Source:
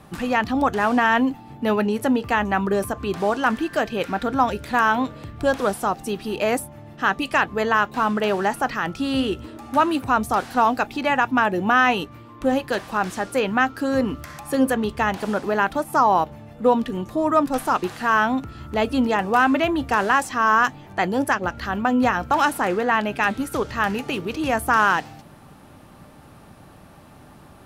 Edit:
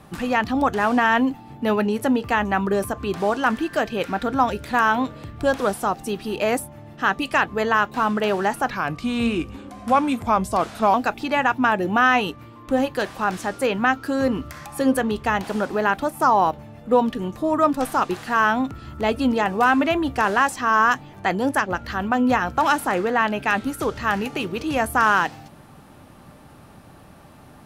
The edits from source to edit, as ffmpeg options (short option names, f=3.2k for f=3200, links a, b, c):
-filter_complex "[0:a]asplit=3[a][b][c];[a]atrim=end=8.704[d];[b]atrim=start=8.7:end=10.67,asetpts=PTS-STARTPTS,asetrate=38808,aresample=44100[e];[c]atrim=start=10.666[f];[d][e]acrossfade=d=0.004:c1=hsin:c2=hsin[g];[g][f]acrossfade=d=0.004:c1=hsin:c2=hsin"